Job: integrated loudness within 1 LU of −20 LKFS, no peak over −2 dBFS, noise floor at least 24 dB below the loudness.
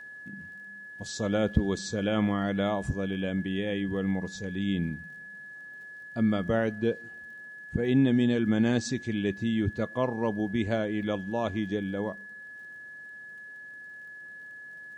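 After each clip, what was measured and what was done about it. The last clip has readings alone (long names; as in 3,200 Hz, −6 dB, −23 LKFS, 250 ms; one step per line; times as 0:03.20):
crackle rate 44 per second; interfering tone 1,700 Hz; level of the tone −42 dBFS; integrated loudness −29.0 LKFS; sample peak −8.5 dBFS; target loudness −20.0 LKFS
→ click removal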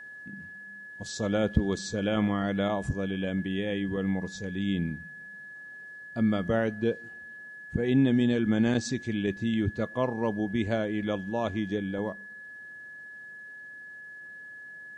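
crackle rate 0.13 per second; interfering tone 1,700 Hz; level of the tone −42 dBFS
→ notch filter 1,700 Hz, Q 30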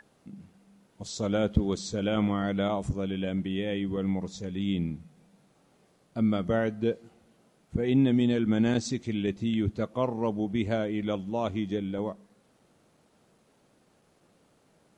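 interfering tone none found; integrated loudness −29.0 LKFS; sample peak −8.5 dBFS; target loudness −20.0 LKFS
→ level +9 dB
brickwall limiter −2 dBFS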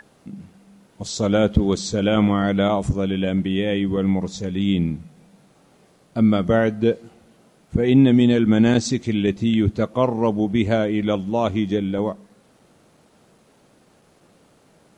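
integrated loudness −20.0 LKFS; sample peak −2.0 dBFS; background noise floor −57 dBFS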